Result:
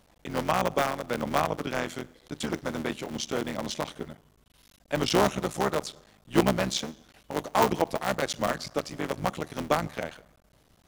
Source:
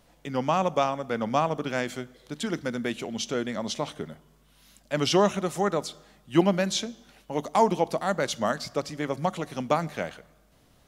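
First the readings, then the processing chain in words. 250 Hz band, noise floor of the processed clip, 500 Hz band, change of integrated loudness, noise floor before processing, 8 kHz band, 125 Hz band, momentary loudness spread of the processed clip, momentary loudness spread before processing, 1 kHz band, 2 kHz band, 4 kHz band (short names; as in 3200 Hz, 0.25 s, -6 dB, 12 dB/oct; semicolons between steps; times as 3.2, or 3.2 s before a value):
-2.5 dB, -63 dBFS, -2.0 dB, -1.5 dB, -61 dBFS, -0.5 dB, -1.5 dB, 11 LU, 11 LU, -1.5 dB, +1.0 dB, -1.0 dB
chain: cycle switcher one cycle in 3, muted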